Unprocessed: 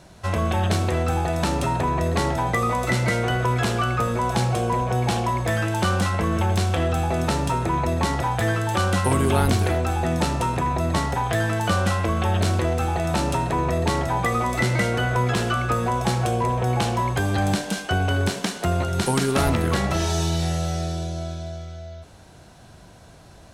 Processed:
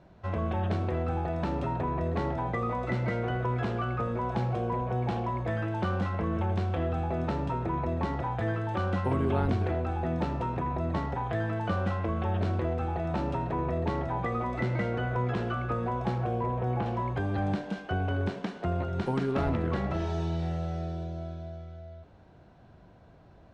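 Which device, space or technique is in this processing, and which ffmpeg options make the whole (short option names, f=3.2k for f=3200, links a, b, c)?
phone in a pocket: -filter_complex "[0:a]lowpass=3.7k,equalizer=f=320:t=o:w=2.2:g=2,highshelf=f=2.3k:g=-10,asettb=1/sr,asplit=3[a][b][c];[a]atrim=end=16.184[d];[b]atrim=start=16.18:end=16.86,asetpts=PTS-STARTPTS,afade=t=in:d=0.004:c=qsin,afade=t=out:st=0.676:d=0.004:c=qsin,acrossover=split=2600[e][f];[f]acompressor=threshold=-51dB:ratio=4:attack=1:release=60[g];[e][g]amix=inputs=2:normalize=0[h];[c]atrim=start=16.856[i];[d][h]acrossfade=d=0.004:c1=hsin:c2=qsin[j];[j][i]acrossfade=d=0.004:c1=qsin:c2=hsin,volume=-8dB"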